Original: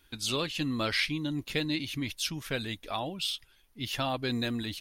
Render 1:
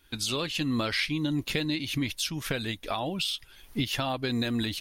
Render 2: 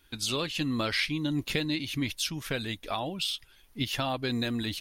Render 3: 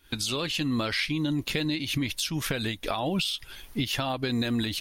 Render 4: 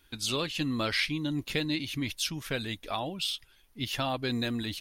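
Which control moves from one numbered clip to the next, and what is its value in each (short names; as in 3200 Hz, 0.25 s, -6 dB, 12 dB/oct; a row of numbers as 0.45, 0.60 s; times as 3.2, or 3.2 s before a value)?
recorder AGC, rising by: 37, 15, 90, 5 dB/s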